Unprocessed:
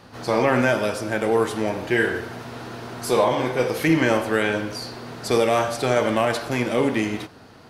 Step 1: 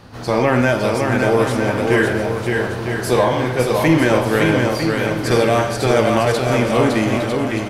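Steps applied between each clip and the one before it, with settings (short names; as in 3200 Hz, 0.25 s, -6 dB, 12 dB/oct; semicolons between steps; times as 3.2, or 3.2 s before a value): low shelf 110 Hz +11 dB; on a send: bouncing-ball echo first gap 0.56 s, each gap 0.7×, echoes 5; on the sum: gain +2.5 dB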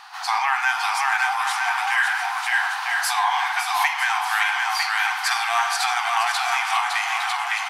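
high shelf 7300 Hz -4.5 dB; compressor, threshold -16 dBFS, peak gain reduction 7.5 dB; brick-wall FIR high-pass 710 Hz; gain +6 dB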